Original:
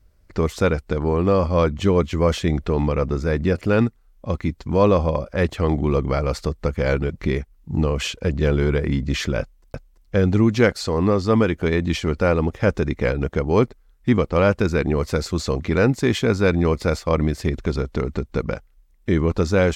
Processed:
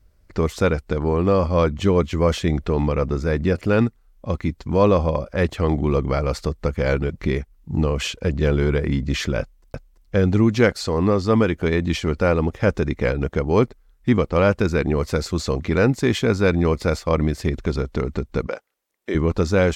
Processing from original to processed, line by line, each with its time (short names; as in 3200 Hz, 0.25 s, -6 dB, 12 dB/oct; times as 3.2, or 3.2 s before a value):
18.47–19.15 Chebyshev high-pass 440 Hz